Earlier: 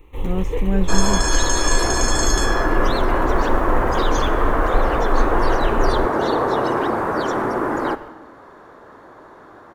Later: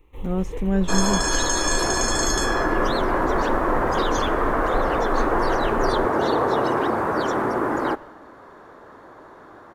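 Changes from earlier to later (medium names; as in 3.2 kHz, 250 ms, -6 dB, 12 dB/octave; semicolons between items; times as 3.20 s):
first sound -8.5 dB; second sound: send -8.0 dB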